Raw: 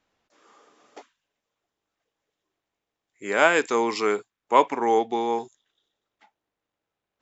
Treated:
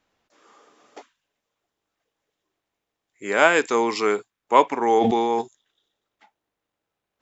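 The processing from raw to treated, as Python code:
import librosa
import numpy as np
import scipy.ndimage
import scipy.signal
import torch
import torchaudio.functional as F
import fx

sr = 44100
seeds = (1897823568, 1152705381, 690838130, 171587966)

y = fx.sustainer(x, sr, db_per_s=21.0, at=(5.0, 5.4), fade=0.02)
y = y * librosa.db_to_amplitude(2.0)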